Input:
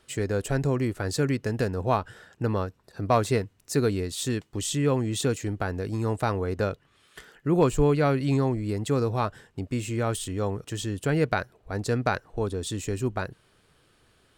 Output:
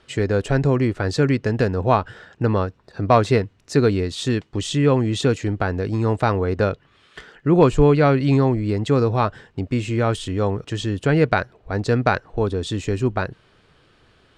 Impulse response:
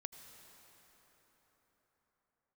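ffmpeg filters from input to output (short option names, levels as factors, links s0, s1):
-af "lowpass=4700,volume=2.24"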